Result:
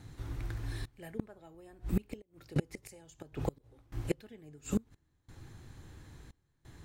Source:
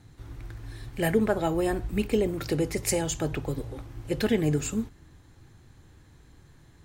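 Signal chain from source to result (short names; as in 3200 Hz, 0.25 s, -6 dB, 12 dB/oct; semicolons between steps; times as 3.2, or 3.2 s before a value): step gate "xxxxx..x" 88 bpm -24 dB; flipped gate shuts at -20 dBFS, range -30 dB; gain +2 dB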